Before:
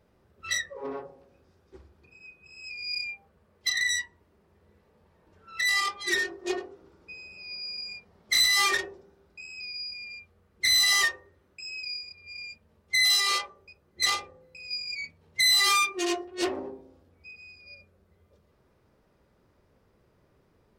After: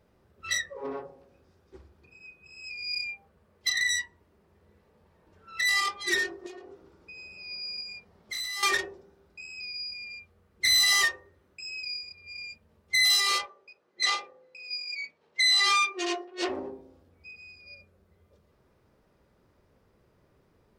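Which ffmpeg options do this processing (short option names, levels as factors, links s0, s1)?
-filter_complex "[0:a]asettb=1/sr,asplit=3[s0][s1][s2];[s0]atrim=end=6.464[s3];[s1]atrim=start=6.46:end=7.18,asetpts=PTS-STARTPTS,afade=t=in:d=0.004:c=qsin,afade=t=out:st=0.716:d=0.004:c=qsin,acompressor=threshold=0.00794:ratio=6:attack=3.2:release=140:knee=1:detection=peak[s4];[s2]atrim=start=7.176[s5];[s3][s4]acrossfade=d=0.004:c1=hsin:c2=qsin[s6];[s6][s5]acrossfade=d=0.004:c1=qsin:c2=hsin,asettb=1/sr,asplit=3[s7][s8][s9];[s7]atrim=end=7.824[s10];[s8]atrim=start=7.82:end=8.63,asetpts=PTS-STARTPTS,afade=t=in:d=0.004:c=qsin,afade=t=out:st=0.806:d=0.004:c=qsin,acompressor=threshold=0.0126:ratio=2.5:attack=3.2:release=140:knee=1:detection=peak[s11];[s9]atrim=start=8.626[s12];[s10][s11]acrossfade=d=0.004:c1=hsin:c2=qsin[s13];[s13][s12]acrossfade=d=0.004:c1=qsin:c2=hsin,asplit=3[s14][s15][s16];[s14]afade=t=out:st=13.45:d=0.02[s17];[s15]highpass=370,lowpass=6000,afade=t=in:st=13.45:d=0.02,afade=t=out:st=16.48:d=0.02[s18];[s16]afade=t=in:st=16.48:d=0.02[s19];[s17][s18][s19]amix=inputs=3:normalize=0"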